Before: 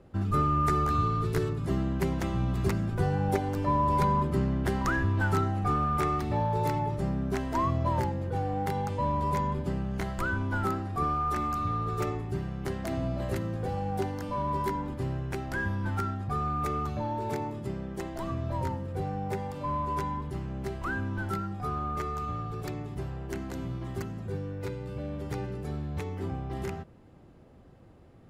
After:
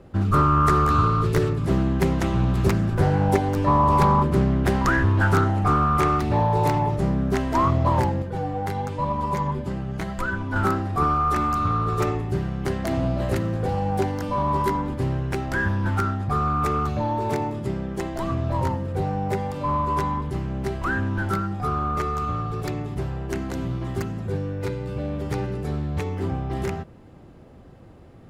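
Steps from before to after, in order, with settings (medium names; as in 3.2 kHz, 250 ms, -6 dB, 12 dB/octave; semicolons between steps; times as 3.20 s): 8.22–10.56 s: flange 1 Hz, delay 3.8 ms, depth 5.9 ms, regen +43%; loudspeaker Doppler distortion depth 0.31 ms; trim +7.5 dB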